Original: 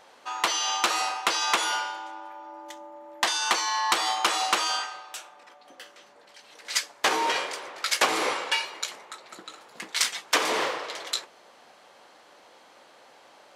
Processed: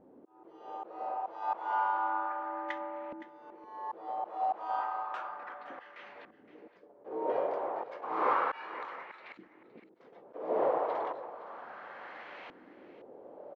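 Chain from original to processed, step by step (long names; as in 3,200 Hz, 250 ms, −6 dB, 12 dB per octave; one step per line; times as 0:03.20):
low-pass filter 6,200 Hz 12 dB per octave
mains-hum notches 50/100/150 Hz
volume swells 594 ms
reversed playback
upward compression, threshold −47 dBFS
reversed playback
auto-filter low-pass saw up 0.32 Hz 270–2,500 Hz
on a send: single-tap delay 516 ms −15 dB
on the sum: level +3 dB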